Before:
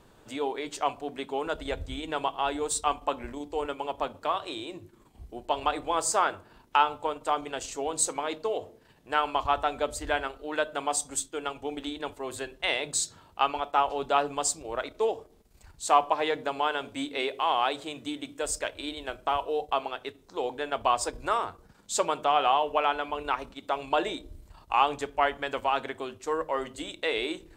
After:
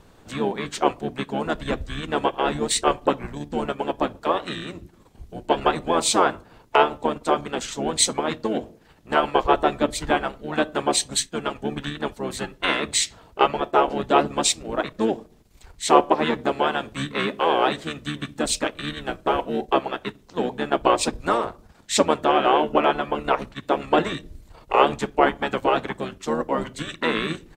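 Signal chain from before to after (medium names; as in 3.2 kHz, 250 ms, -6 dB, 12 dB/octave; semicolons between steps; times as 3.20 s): harmony voices -12 st -1 dB, -5 st -8 dB; harmonic-percussive split percussive +5 dB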